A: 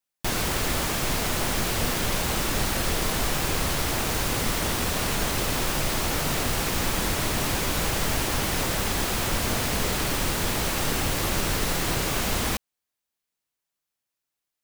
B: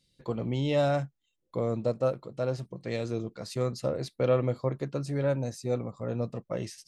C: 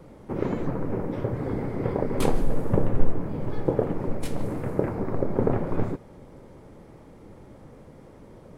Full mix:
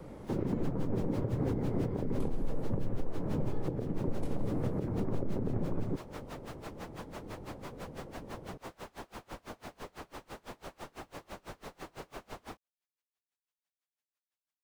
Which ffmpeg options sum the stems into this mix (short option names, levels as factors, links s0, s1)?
-filter_complex "[0:a]asplit=2[s0][s1];[s1]highpass=f=720:p=1,volume=8.91,asoftclip=type=tanh:threshold=0.251[s2];[s0][s2]amix=inputs=2:normalize=0,lowpass=f=3400:p=1,volume=0.501,aeval=exprs='val(0)*pow(10,-31*(0.5-0.5*cos(2*PI*6*n/s))/20)':c=same,volume=0.188[s3];[2:a]volume=1.06[s4];[s3][s4]amix=inputs=2:normalize=0,acrossover=split=330|1100[s5][s6][s7];[s5]acompressor=threshold=0.0891:ratio=4[s8];[s6]acompressor=threshold=0.0141:ratio=4[s9];[s7]acompressor=threshold=0.00178:ratio=4[s10];[s8][s9][s10]amix=inputs=3:normalize=0,alimiter=limit=0.075:level=0:latency=1:release=187,volume=1"